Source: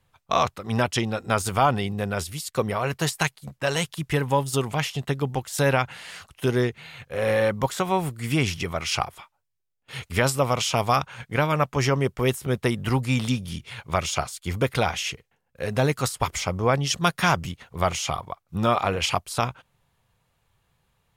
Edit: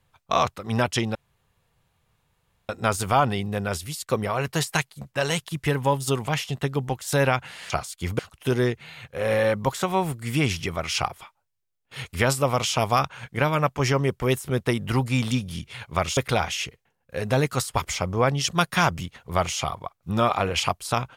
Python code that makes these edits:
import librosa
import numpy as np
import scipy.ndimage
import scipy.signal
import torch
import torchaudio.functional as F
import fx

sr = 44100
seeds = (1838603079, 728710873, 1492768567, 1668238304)

y = fx.edit(x, sr, fx.insert_room_tone(at_s=1.15, length_s=1.54),
    fx.move(start_s=14.14, length_s=0.49, to_s=6.16), tone=tone)